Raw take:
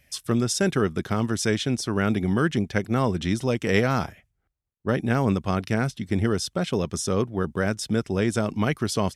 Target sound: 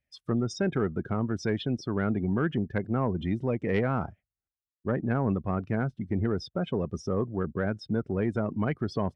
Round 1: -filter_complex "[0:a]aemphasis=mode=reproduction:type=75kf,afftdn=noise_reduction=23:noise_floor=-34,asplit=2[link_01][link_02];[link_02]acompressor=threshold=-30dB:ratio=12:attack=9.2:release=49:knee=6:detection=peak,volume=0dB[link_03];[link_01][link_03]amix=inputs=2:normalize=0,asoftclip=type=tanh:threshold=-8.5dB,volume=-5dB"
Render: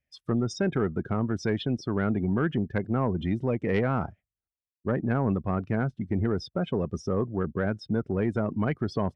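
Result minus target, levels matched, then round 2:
downward compressor: peak gain reduction −7.5 dB
-filter_complex "[0:a]aemphasis=mode=reproduction:type=75kf,afftdn=noise_reduction=23:noise_floor=-34,asplit=2[link_01][link_02];[link_02]acompressor=threshold=-38dB:ratio=12:attack=9.2:release=49:knee=6:detection=peak,volume=0dB[link_03];[link_01][link_03]amix=inputs=2:normalize=0,asoftclip=type=tanh:threshold=-8.5dB,volume=-5dB"

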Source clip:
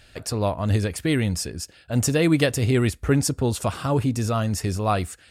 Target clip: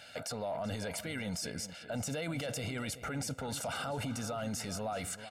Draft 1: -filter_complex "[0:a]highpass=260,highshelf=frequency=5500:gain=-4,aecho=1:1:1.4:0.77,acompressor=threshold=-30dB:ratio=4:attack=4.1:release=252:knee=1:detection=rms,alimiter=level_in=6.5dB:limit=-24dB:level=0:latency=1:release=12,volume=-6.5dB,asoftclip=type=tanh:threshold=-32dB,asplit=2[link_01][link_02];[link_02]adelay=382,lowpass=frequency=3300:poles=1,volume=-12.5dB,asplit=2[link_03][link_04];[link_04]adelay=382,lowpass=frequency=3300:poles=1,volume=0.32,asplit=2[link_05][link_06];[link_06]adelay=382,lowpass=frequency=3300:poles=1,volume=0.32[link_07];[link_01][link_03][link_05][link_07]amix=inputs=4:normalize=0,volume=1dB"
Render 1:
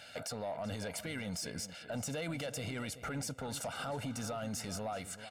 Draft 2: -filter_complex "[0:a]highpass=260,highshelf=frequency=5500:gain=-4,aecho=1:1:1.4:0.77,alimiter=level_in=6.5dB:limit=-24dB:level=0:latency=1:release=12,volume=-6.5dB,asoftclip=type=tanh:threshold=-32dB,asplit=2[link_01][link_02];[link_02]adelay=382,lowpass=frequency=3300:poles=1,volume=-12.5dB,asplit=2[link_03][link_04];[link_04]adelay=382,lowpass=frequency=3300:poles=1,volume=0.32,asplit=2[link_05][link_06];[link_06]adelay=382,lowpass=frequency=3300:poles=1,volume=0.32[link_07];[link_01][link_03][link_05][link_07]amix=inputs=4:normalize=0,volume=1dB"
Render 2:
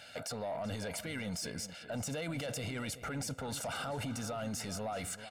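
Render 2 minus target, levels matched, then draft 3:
soft clipping: distortion +14 dB
-filter_complex "[0:a]highpass=260,highshelf=frequency=5500:gain=-4,aecho=1:1:1.4:0.77,alimiter=level_in=6.5dB:limit=-24dB:level=0:latency=1:release=12,volume=-6.5dB,asoftclip=type=tanh:threshold=-24dB,asplit=2[link_01][link_02];[link_02]adelay=382,lowpass=frequency=3300:poles=1,volume=-12.5dB,asplit=2[link_03][link_04];[link_04]adelay=382,lowpass=frequency=3300:poles=1,volume=0.32,asplit=2[link_05][link_06];[link_06]adelay=382,lowpass=frequency=3300:poles=1,volume=0.32[link_07];[link_01][link_03][link_05][link_07]amix=inputs=4:normalize=0,volume=1dB"

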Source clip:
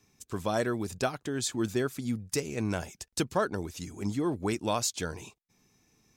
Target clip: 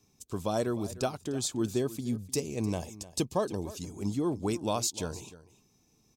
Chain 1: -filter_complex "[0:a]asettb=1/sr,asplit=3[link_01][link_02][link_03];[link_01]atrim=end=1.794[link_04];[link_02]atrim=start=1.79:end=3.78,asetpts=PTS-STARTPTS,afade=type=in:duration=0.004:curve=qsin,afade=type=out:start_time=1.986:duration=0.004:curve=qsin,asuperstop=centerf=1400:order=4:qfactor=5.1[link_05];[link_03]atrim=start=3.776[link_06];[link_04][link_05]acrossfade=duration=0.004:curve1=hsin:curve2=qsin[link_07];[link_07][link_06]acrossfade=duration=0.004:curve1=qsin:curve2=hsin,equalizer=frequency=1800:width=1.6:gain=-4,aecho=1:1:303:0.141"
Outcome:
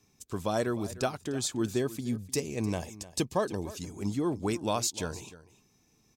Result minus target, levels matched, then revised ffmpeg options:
2,000 Hz band +4.5 dB
-filter_complex "[0:a]asettb=1/sr,asplit=3[link_01][link_02][link_03];[link_01]atrim=end=1.794[link_04];[link_02]atrim=start=1.79:end=3.78,asetpts=PTS-STARTPTS,afade=type=in:duration=0.004:curve=qsin,afade=type=out:start_time=1.986:duration=0.004:curve=qsin,asuperstop=centerf=1400:order=4:qfactor=5.1[link_05];[link_03]atrim=start=3.776[link_06];[link_04][link_05]acrossfade=duration=0.004:curve1=hsin:curve2=qsin[link_07];[link_07][link_06]acrossfade=duration=0.004:curve1=qsin:curve2=hsin,equalizer=frequency=1800:width=1.6:gain=-11,aecho=1:1:303:0.141"

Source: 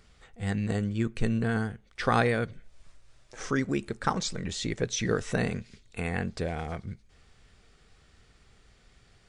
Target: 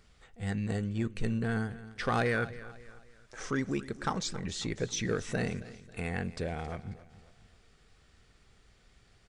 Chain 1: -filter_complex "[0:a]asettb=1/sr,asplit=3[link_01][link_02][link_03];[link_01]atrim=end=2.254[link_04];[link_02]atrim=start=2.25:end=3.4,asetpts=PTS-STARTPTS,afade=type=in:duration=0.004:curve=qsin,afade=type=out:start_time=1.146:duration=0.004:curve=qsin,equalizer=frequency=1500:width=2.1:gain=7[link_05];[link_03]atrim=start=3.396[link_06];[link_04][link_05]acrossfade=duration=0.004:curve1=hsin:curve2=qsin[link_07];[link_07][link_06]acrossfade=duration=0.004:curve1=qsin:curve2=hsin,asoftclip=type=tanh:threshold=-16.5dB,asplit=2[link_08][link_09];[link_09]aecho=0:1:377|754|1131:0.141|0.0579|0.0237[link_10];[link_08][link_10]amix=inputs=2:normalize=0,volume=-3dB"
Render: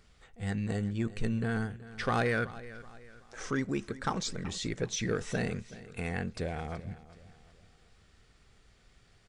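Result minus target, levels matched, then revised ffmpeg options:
echo 106 ms late
-filter_complex "[0:a]asettb=1/sr,asplit=3[link_01][link_02][link_03];[link_01]atrim=end=2.254[link_04];[link_02]atrim=start=2.25:end=3.4,asetpts=PTS-STARTPTS,afade=type=in:duration=0.004:curve=qsin,afade=type=out:start_time=1.146:duration=0.004:curve=qsin,equalizer=frequency=1500:width=2.1:gain=7[link_05];[link_03]atrim=start=3.396[link_06];[link_04][link_05]acrossfade=duration=0.004:curve1=hsin:curve2=qsin[link_07];[link_07][link_06]acrossfade=duration=0.004:curve1=qsin:curve2=hsin,asoftclip=type=tanh:threshold=-16.5dB,asplit=2[link_08][link_09];[link_09]aecho=0:1:271|542|813:0.141|0.0579|0.0237[link_10];[link_08][link_10]amix=inputs=2:normalize=0,volume=-3dB"

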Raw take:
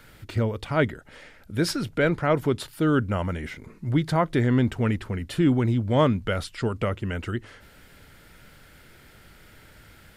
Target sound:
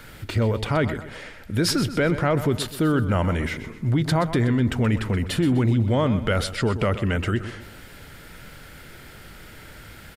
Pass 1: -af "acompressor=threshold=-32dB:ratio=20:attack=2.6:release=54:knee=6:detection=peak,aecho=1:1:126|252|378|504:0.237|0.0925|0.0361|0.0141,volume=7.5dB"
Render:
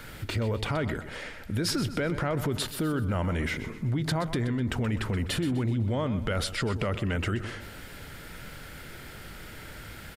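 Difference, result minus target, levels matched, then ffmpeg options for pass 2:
downward compressor: peak gain reduction +8 dB
-af "acompressor=threshold=-23.5dB:ratio=20:attack=2.6:release=54:knee=6:detection=peak,aecho=1:1:126|252|378|504:0.237|0.0925|0.0361|0.0141,volume=7.5dB"

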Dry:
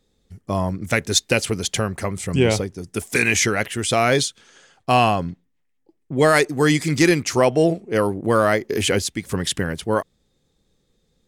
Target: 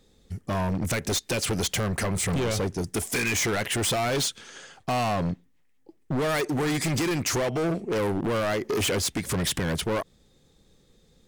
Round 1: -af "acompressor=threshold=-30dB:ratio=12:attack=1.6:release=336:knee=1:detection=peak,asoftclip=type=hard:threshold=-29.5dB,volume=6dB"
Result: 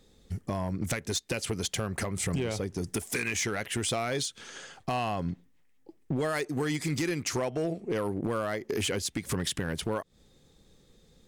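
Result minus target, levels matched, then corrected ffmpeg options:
downward compressor: peak gain reduction +10 dB
-af "acompressor=threshold=-19dB:ratio=12:attack=1.6:release=336:knee=1:detection=peak,asoftclip=type=hard:threshold=-29.5dB,volume=6dB"

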